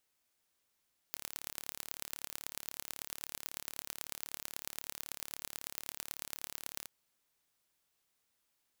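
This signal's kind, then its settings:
impulse train 36.2 per second, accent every 4, −11 dBFS 5.74 s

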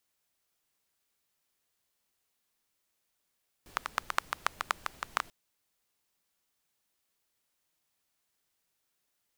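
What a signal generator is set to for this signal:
rain-like ticks over hiss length 1.64 s, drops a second 8, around 1,200 Hz, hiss −18 dB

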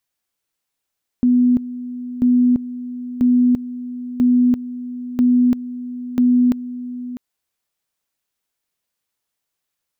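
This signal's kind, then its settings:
tone at two levels in turn 247 Hz −10.5 dBFS, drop 15 dB, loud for 0.34 s, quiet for 0.65 s, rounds 6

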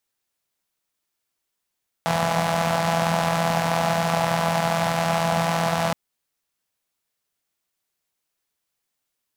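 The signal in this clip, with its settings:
pulse-train model of a four-cylinder engine, steady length 3.87 s, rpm 5,000, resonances 180/700 Hz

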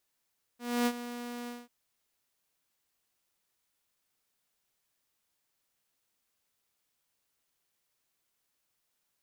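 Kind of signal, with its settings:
note with an ADSR envelope saw 241 Hz, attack 274 ms, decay 56 ms, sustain −13.5 dB, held 0.89 s, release 201 ms −22 dBFS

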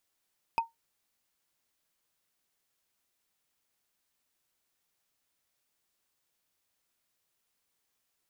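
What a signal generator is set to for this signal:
struck wood, lowest mode 917 Hz, decay 0.16 s, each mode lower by 7.5 dB, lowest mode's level −20 dB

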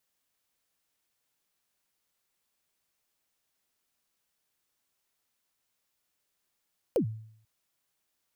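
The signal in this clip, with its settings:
synth kick length 0.49 s, from 570 Hz, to 110 Hz, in 95 ms, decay 0.64 s, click on, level −20 dB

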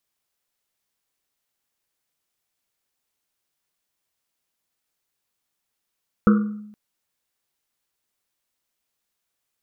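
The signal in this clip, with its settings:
drum after Risset length 0.47 s, pitch 210 Hz, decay 0.86 s, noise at 1,300 Hz, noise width 290 Hz, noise 15%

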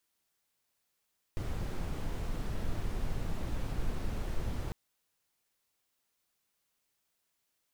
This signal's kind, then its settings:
noise brown, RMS −33 dBFS 3.35 s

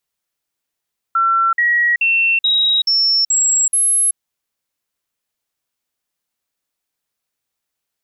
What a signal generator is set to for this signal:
stepped sweep 1,350 Hz up, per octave 2, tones 7, 0.38 s, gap 0.05 s −11.5 dBFS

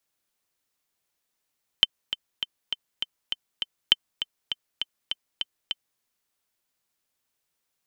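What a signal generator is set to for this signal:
click track 201 BPM, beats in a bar 7, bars 2, 3,080 Hz, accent 11.5 dB −2.5 dBFS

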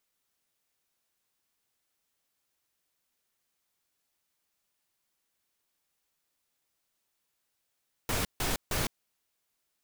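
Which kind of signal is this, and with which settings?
noise bursts pink, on 0.16 s, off 0.15 s, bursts 3, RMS −30 dBFS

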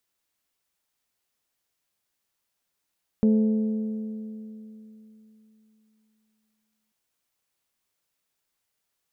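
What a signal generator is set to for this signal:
struck metal bell, length 3.69 s, lowest mode 217 Hz, decay 3.39 s, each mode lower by 10 dB, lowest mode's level −15.5 dB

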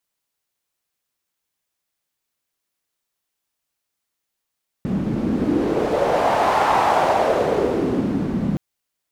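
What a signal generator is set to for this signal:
wind from filtered noise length 3.72 s, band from 200 Hz, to 850 Hz, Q 3, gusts 1, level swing 5 dB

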